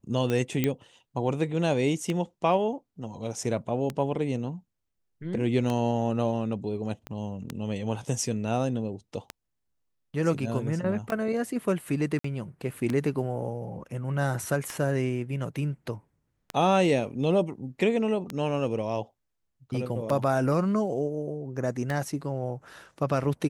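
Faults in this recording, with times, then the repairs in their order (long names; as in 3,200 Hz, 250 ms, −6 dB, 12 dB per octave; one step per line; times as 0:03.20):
scratch tick 33 1/3 rpm −16 dBFS
0:00.64: click −11 dBFS
0:07.07: click −22 dBFS
0:12.19–0:12.24: drop-out 54 ms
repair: click removal
repair the gap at 0:12.19, 54 ms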